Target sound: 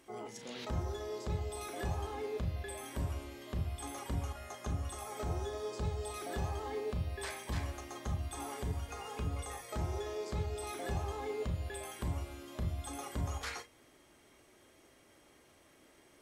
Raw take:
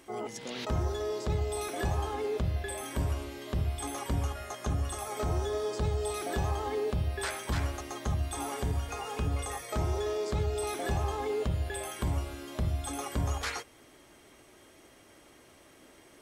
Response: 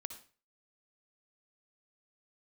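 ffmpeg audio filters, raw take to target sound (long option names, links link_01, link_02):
-filter_complex "[0:a]asettb=1/sr,asplit=3[link_01][link_02][link_03];[link_01]atrim=end=7.104[link_04];[link_02]atrim=start=7.1:end=7.7,asetpts=PTS-STARTPTS,afade=type=in:duration=0.004:curve=qsin,afade=type=out:start_time=0.596:duration=0.004:curve=qsin,bandreject=frequency=1400:width=7.7[link_05];[link_03]atrim=start=7.696[link_06];[link_04][link_05]acrossfade=duration=0.004:curve1=hsin:curve2=qsin[link_07];[link_07][link_06]acrossfade=duration=0.004:curve1=qsin:curve2=hsin[link_08];[1:a]atrim=start_sample=2205,afade=type=out:start_time=0.13:duration=0.01,atrim=end_sample=6174,asetrate=79380,aresample=44100[link_09];[link_08][link_09]afir=irnorm=-1:irlink=0,volume=2dB"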